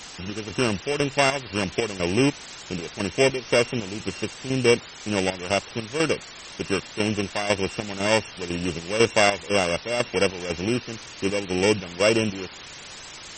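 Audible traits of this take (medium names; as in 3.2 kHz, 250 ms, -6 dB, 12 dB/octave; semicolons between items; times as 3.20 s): a buzz of ramps at a fixed pitch in blocks of 16 samples; chopped level 2 Hz, depth 65%, duty 60%; a quantiser's noise floor 6-bit, dither triangular; MP3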